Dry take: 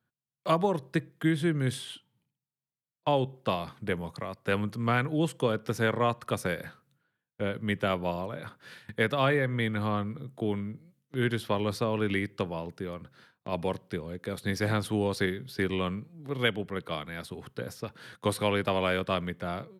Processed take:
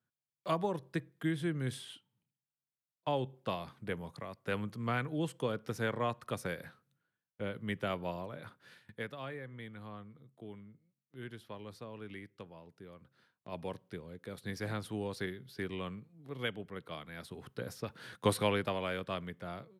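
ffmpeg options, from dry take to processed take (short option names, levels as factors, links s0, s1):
-af "volume=2.99,afade=t=out:st=8.47:d=0.72:silence=0.298538,afade=t=in:st=12.63:d=1.06:silence=0.398107,afade=t=in:st=16.96:d=1.31:silence=0.354813,afade=t=out:st=18.27:d=0.52:silence=0.398107"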